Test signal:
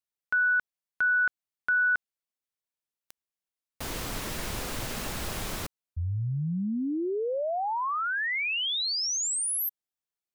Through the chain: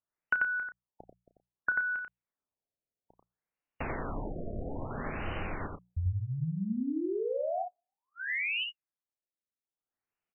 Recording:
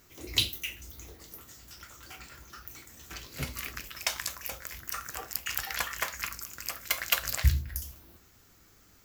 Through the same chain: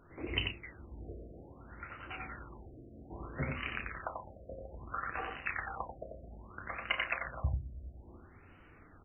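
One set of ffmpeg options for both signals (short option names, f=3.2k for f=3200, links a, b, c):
-filter_complex "[0:a]acompressor=threshold=-37dB:ratio=8:attack=82:release=807:knee=6:detection=peak,bandreject=f=60:t=h:w=6,bandreject=f=120:t=h:w=6,bandreject=f=180:t=h:w=6,asplit=2[a][b];[b]adelay=32,volume=-10dB[c];[a][c]amix=inputs=2:normalize=0,aecho=1:1:90:0.668,afftfilt=real='re*lt(b*sr/1024,690*pow(3100/690,0.5+0.5*sin(2*PI*0.61*pts/sr)))':imag='im*lt(b*sr/1024,690*pow(3100/690,0.5+0.5*sin(2*PI*0.61*pts/sr)))':win_size=1024:overlap=0.75,volume=3.5dB"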